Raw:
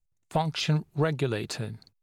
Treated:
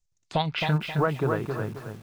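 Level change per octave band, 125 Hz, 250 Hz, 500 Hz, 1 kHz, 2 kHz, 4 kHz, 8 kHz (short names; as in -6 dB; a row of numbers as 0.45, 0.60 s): +1.0 dB, +1.0 dB, +2.5 dB, +3.5 dB, +4.5 dB, 0.0 dB, under -10 dB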